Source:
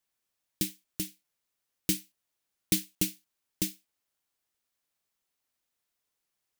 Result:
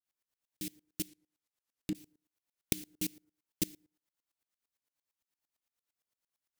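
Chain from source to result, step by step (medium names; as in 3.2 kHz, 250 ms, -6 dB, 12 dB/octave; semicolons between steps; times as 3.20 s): 1.08–1.95 s: low-pass that closes with the level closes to 870 Hz, closed at -28.5 dBFS; FDN reverb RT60 0.49 s, low-frequency decay 0.85×, high-frequency decay 0.4×, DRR 10 dB; sawtooth tremolo in dB swelling 8.8 Hz, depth 24 dB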